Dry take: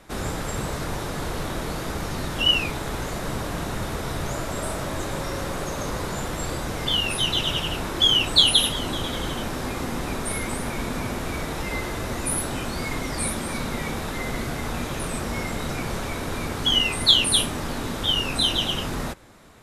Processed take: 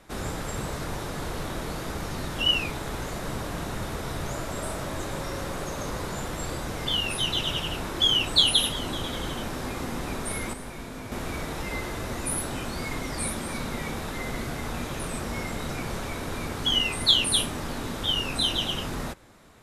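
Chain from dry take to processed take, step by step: 10.53–11.12 resonator 52 Hz, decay 0.59 s, harmonics all, mix 70%; gain -3.5 dB

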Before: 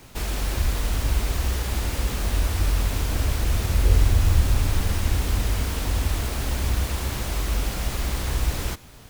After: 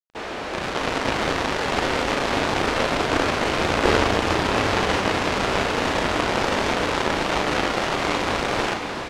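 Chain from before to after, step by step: HPF 370 Hz 12 dB/oct; AGC gain up to 14 dB; companded quantiser 2-bit; tape spacing loss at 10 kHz 30 dB; doubler 37 ms -7 dB; diffused feedback echo 0.709 s, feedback 47%, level -8 dB; gain +1 dB

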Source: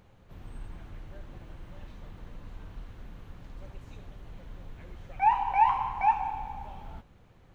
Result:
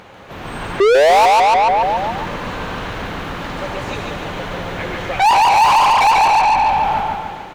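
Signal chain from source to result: AGC gain up to 5.5 dB; painted sound rise, 0.8–1.26, 380–950 Hz -14 dBFS; feedback echo 0.143 s, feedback 54%, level -3.5 dB; overdrive pedal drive 33 dB, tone 3600 Hz, clips at -4.5 dBFS; gain -1 dB

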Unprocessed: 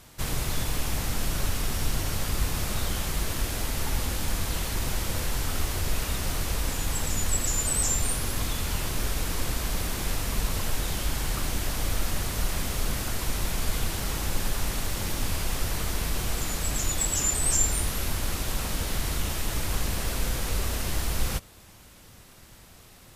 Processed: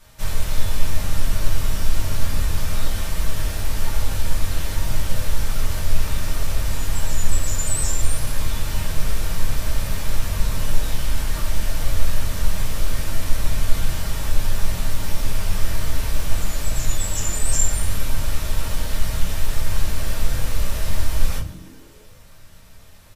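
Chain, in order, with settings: bell 310 Hz -12.5 dB 0.29 oct; frequency-shifting echo 0.146 s, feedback 60%, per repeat +81 Hz, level -17.5 dB; shoebox room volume 130 m³, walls furnished, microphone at 2.5 m; gain -5 dB

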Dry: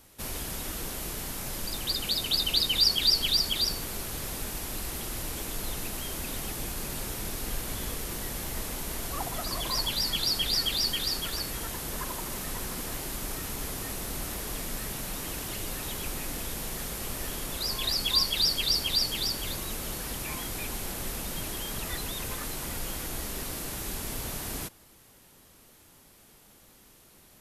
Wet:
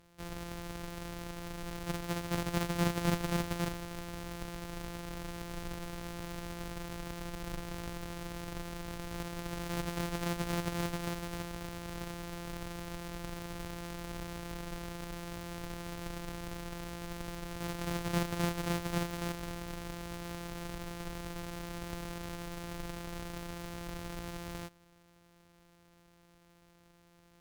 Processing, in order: sample sorter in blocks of 256 samples; tube stage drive 17 dB, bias 0.65; gain -3.5 dB

